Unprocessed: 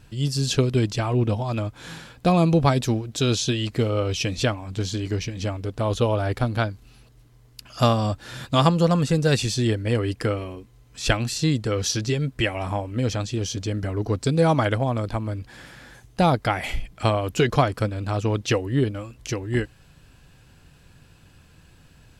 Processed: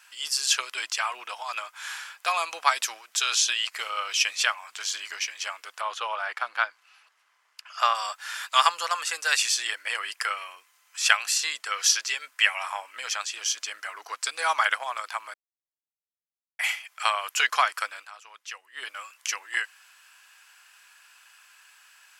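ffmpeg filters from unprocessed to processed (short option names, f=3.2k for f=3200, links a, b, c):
-filter_complex "[0:a]asettb=1/sr,asplit=3[a][b][c];[a]atrim=end=5.814[d];[b]atrim=start=5.81:end=7.95,asetpts=PTS-STARTPTS,afade=t=in:d=0.004:c=qsin,afade=t=out:st=2.136:d=0.004:c=qsin,aemphasis=mode=reproduction:type=75fm[e];[c]atrim=start=7.946[f];[d][e]acrossfade=d=0.004:c1=hsin:c2=qsin[g];[g][f]acrossfade=d=0.004:c1=qsin:c2=hsin,asplit=5[h][i][j][k][l];[h]atrim=end=15.34,asetpts=PTS-STARTPTS,afade=t=out:st=15.336:d=0.004:c=hsin[m];[i]atrim=start=15.34:end=16.59,asetpts=PTS-STARTPTS,volume=0[n];[j]atrim=start=16.59:end=18.1,asetpts=PTS-STARTPTS,afade=t=in:d=0.004:c=hsin,afade=t=out:st=1.37:d=0.14:silence=0.16788[o];[k]atrim=start=18.1:end=18.72,asetpts=PTS-STARTPTS,volume=-15.5dB[p];[l]atrim=start=18.72,asetpts=PTS-STARTPTS,afade=t=in:d=0.14:silence=0.16788[q];[m][n][o][p][q]concat=n=5:v=0:a=1,highpass=f=1.1k:w=0.5412,highpass=f=1.1k:w=1.3066,equalizer=f=3.9k:w=3.1:g=-6.5,volume=6.5dB"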